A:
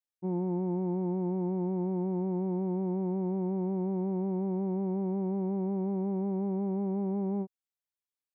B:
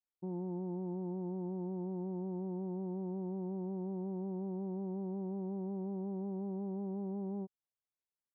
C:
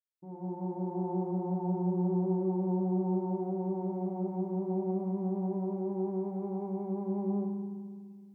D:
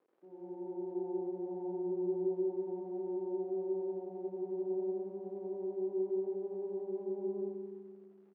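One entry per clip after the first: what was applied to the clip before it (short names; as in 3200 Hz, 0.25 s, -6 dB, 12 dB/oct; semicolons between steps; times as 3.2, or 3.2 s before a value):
LPF 1200 Hz 12 dB/oct; limiter -31.5 dBFS, peak gain reduction 6 dB; gain -2.5 dB
opening faded in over 1.23 s; in parallel at +0.5 dB: vocal rider within 5 dB; on the sum: FDN reverb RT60 1.7 s, low-frequency decay 1.5×, high-frequency decay 0.8×, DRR -1 dB
crackle 420/s -41 dBFS; ladder band-pass 420 Hz, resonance 60%; on a send: echo 89 ms -3.5 dB; on the sum: gain +1.5 dB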